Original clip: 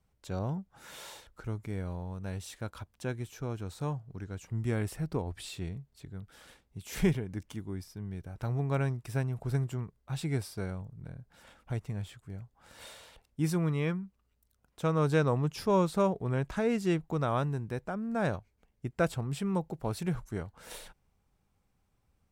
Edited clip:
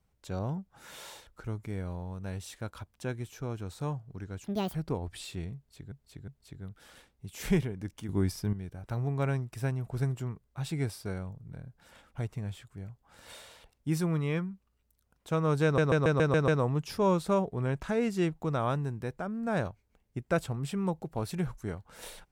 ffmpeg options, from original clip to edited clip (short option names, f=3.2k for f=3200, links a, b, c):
-filter_complex "[0:a]asplit=13[a][b][c][d][e][f][g][h][i][j][k][l][m];[a]atrim=end=4.444[n];[b]atrim=start=4.44:end=4.99,asetpts=PTS-STARTPTS,asetrate=78498,aresample=44100,atrim=end_sample=13626,asetpts=PTS-STARTPTS[o];[c]atrim=start=4.986:end=6.162[p];[d]atrim=start=5.798:end=6.162[q];[e]atrim=start=5.798:end=7.612[r];[f]atrim=start=7.608:end=8.052,asetpts=PTS-STARTPTS,volume=10.5dB[s];[g]atrim=start=8.048:end=15.302[t];[h]atrim=start=15.158:end=15.302[u];[i]atrim=start=15.158:end=15.302[v];[j]atrim=start=15.158:end=15.302[w];[k]atrim=start=15.158:end=15.302[x];[l]atrim=start=15.158:end=15.302[y];[m]atrim=start=15.158[z];[n][o]acrossfade=d=0.004:c1=hsin:c2=hsin[aa];[aa][p]acrossfade=d=0.004:c1=hsin:c2=hsin[ab];[ab][q]acrossfade=d=0.004:c1=hsin:c2=hsin[ac];[ac][r]acrossfade=d=0.004:c1=hsin:c2=hsin[ad];[ad][s]acrossfade=d=0.004:c1=hsin:c2=hsin[ae];[ae][t]acrossfade=d=0.004:c1=hsin:c2=hsin[af];[af][u]acrossfade=d=0.004:c1=hsin:c2=hsin[ag];[ag][v]acrossfade=d=0.004:c1=hsin:c2=hsin[ah];[ah][w]acrossfade=d=0.004:c1=hsin:c2=hsin[ai];[ai][x]acrossfade=d=0.004:c1=hsin:c2=hsin[aj];[aj][y]acrossfade=d=0.004:c1=hsin:c2=hsin[ak];[ak][z]acrossfade=d=0.004:c1=hsin:c2=hsin"